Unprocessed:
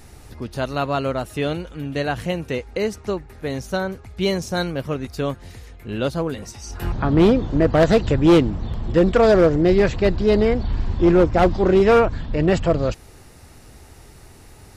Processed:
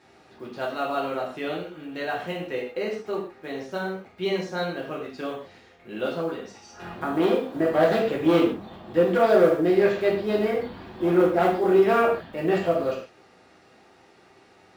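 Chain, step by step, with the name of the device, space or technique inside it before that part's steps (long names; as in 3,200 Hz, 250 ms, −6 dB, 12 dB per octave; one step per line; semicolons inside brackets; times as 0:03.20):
early digital voice recorder (band-pass filter 270–3,600 Hz; one scale factor per block 7 bits)
0:07.11–0:07.54: high-pass filter 210 Hz → 530 Hz 6 dB per octave
reverb whose tail is shaped and stops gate 180 ms falling, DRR −4 dB
level −8.5 dB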